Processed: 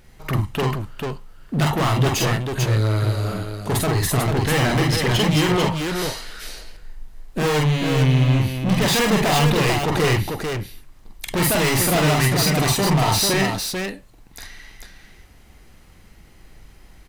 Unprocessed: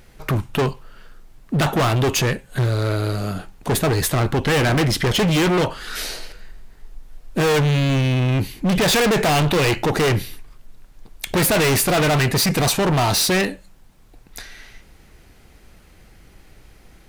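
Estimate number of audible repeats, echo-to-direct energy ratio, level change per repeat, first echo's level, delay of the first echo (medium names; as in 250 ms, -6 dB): 2, 0.5 dB, no regular repeats, -1.0 dB, 46 ms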